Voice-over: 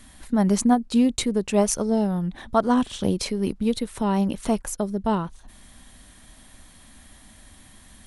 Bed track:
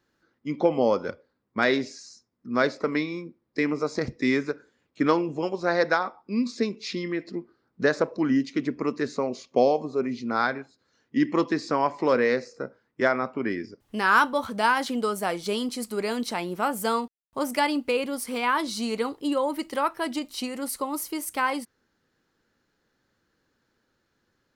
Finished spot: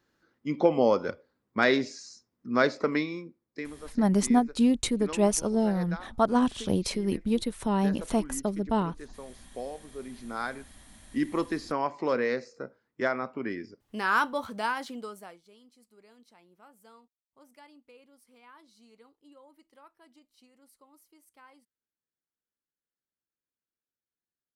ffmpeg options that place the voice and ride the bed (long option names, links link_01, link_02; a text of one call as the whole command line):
ffmpeg -i stem1.wav -i stem2.wav -filter_complex "[0:a]adelay=3650,volume=-3.5dB[link_01];[1:a]volume=11.5dB,afade=type=out:start_time=2.86:duration=0.88:silence=0.141254,afade=type=in:start_time=9.83:duration=1.08:silence=0.251189,afade=type=out:start_time=14.41:duration=1.02:silence=0.0595662[link_02];[link_01][link_02]amix=inputs=2:normalize=0" out.wav